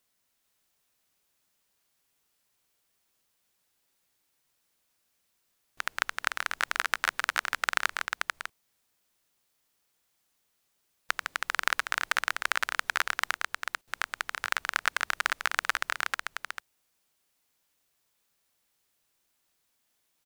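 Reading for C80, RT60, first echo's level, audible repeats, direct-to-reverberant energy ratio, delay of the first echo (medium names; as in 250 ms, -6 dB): no reverb, no reverb, -4.5 dB, 1, no reverb, 442 ms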